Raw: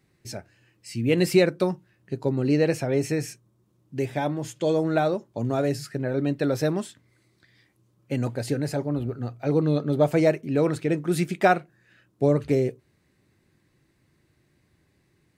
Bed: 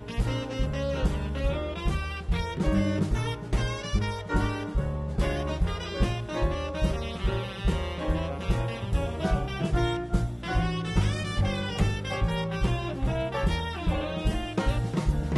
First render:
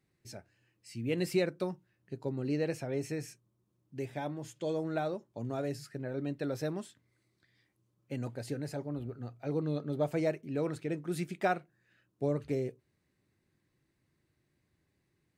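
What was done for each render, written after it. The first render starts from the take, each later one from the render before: trim -11 dB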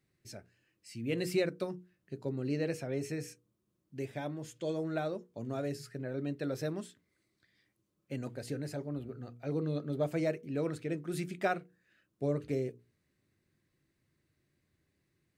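peaking EQ 860 Hz -5.5 dB 0.46 oct; hum notches 60/120/180/240/300/360/420/480 Hz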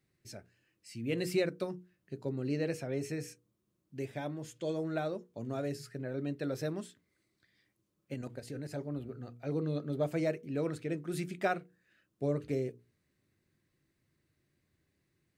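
8.14–8.73 s: level held to a coarse grid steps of 10 dB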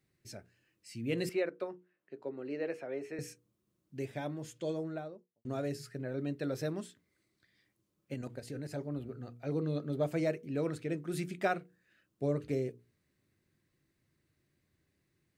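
1.29–3.19 s: three-band isolator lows -22 dB, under 300 Hz, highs -17 dB, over 2.8 kHz; 4.54–5.45 s: studio fade out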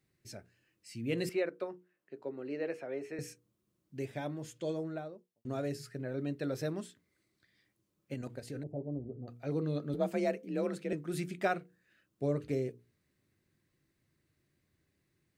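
8.63–9.28 s: inverse Chebyshev low-pass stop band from 1.5 kHz; 9.94–10.93 s: frequency shift +38 Hz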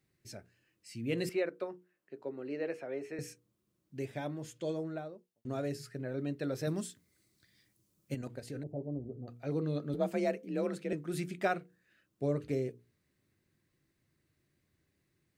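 6.67–8.15 s: tone controls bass +6 dB, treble +10 dB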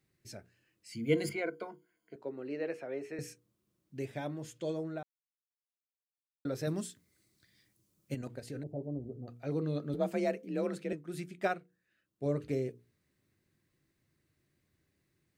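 0.92–2.16 s: rippled EQ curve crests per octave 1.8, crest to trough 17 dB; 5.03–6.45 s: mute; 10.92–12.26 s: upward expansion, over -41 dBFS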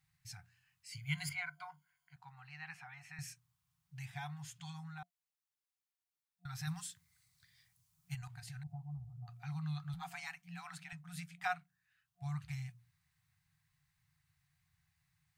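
FFT band-reject 180–700 Hz; dynamic bell 330 Hz, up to -6 dB, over -55 dBFS, Q 0.75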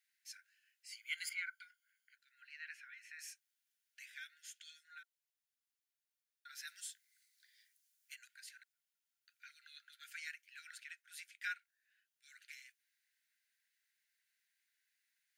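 Chebyshev high-pass 1.4 kHz, order 10; band-stop 8 kHz, Q 14

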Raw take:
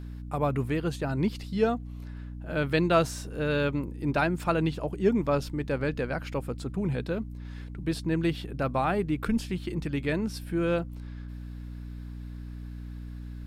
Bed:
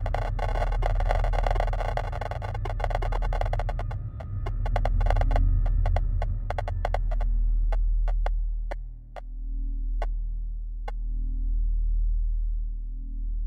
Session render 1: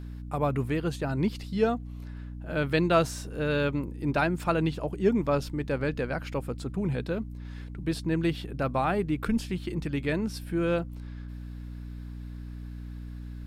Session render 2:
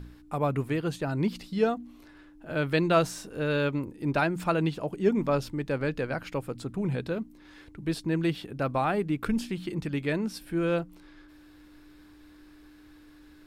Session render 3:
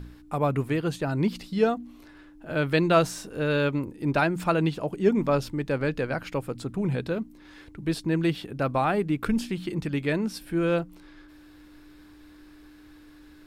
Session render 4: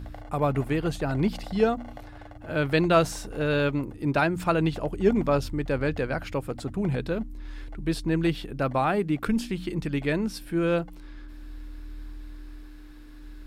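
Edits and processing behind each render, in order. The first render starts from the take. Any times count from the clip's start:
no audible change
de-hum 60 Hz, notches 4
trim +2.5 dB
add bed -14.5 dB

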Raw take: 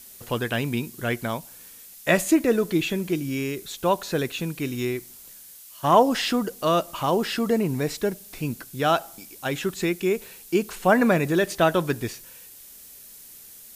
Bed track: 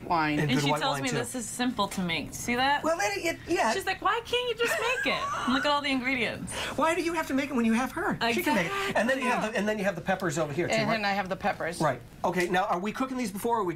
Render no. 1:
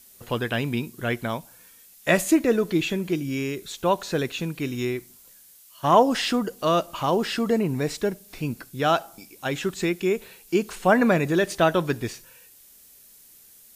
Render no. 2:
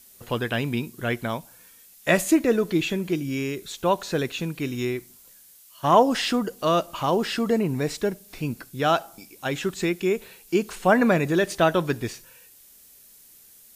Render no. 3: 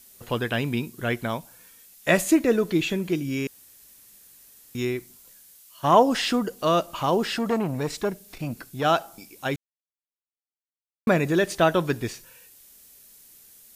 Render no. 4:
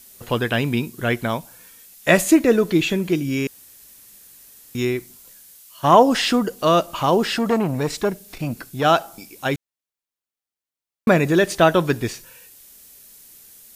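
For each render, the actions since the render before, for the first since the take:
noise print and reduce 6 dB
no audible change
3.47–4.75 s: room tone; 7.37–8.85 s: transformer saturation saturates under 710 Hz; 9.56–11.07 s: mute
trim +5 dB; peak limiter -1 dBFS, peak gain reduction 1.5 dB

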